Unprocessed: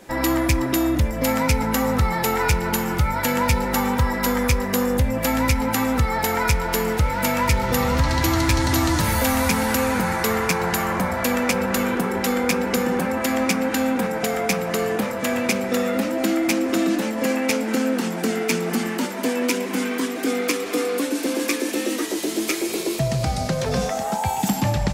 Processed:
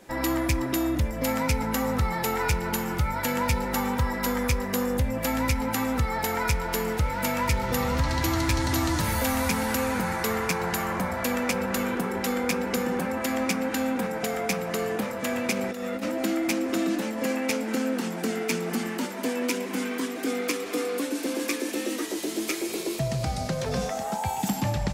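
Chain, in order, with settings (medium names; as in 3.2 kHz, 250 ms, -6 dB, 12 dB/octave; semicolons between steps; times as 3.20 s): 15.55–16.11 s: compressor with a negative ratio -24 dBFS, ratio -0.5; trim -5.5 dB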